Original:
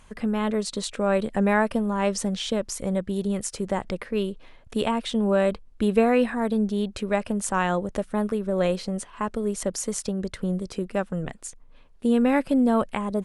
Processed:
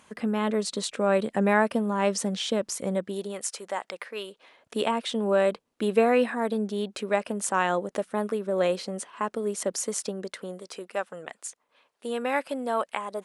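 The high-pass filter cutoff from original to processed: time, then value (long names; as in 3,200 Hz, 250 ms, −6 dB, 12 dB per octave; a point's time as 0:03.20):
0:02.88 190 Hz
0:03.53 700 Hz
0:04.24 700 Hz
0:04.78 280 Hz
0:10.05 280 Hz
0:10.68 590 Hz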